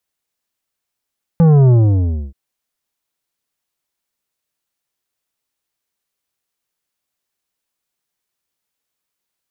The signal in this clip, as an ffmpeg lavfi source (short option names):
-f lavfi -i "aevalsrc='0.422*clip((0.93-t)/0.64,0,1)*tanh(3.16*sin(2*PI*170*0.93/log(65/170)*(exp(log(65/170)*t/0.93)-1)))/tanh(3.16)':d=0.93:s=44100"